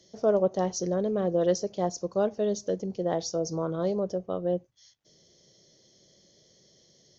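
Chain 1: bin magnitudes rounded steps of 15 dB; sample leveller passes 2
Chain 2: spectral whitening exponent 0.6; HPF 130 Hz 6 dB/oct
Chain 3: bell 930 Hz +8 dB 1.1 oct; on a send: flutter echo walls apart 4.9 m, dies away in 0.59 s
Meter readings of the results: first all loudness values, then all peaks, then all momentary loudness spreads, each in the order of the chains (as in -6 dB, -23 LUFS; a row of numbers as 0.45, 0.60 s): -23.5, -29.0, -23.0 LUFS; -12.5, -12.0, -7.5 dBFS; 4, 6, 7 LU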